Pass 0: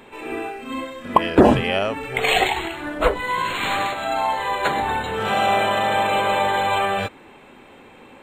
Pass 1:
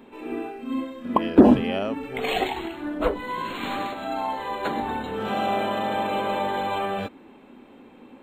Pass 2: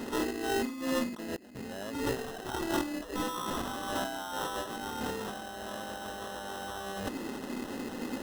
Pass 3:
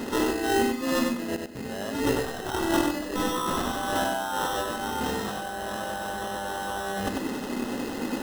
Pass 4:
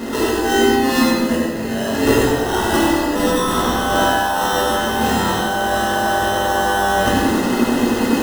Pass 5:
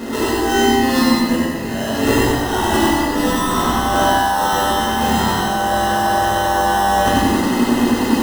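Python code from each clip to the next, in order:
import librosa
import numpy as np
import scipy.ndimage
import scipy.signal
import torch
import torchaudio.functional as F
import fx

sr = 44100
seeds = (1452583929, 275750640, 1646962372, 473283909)

y1 = fx.graphic_eq(x, sr, hz=(125, 250, 2000, 8000), db=(-4, 11, -4, -7))
y1 = F.gain(torch.from_numpy(y1), -6.5).numpy()
y2 = fx.over_compress(y1, sr, threshold_db=-38.0, ratio=-1.0)
y2 = fx.sample_hold(y2, sr, seeds[0], rate_hz=2300.0, jitter_pct=0)
y3 = fx.echo_feedback(y2, sr, ms=96, feedback_pct=19, wet_db=-4.5)
y3 = F.gain(torch.from_numpy(y3), 5.5).numpy()
y4 = fx.rider(y3, sr, range_db=10, speed_s=2.0)
y4 = fx.rev_plate(y4, sr, seeds[1], rt60_s=1.5, hf_ratio=0.75, predelay_ms=0, drr_db=-4.0)
y4 = F.gain(torch.from_numpy(y4), 5.5).numpy()
y5 = y4 + 10.0 ** (-3.5 / 20.0) * np.pad(y4, (int(95 * sr / 1000.0), 0))[:len(y4)]
y5 = F.gain(torch.from_numpy(y5), -1.0).numpy()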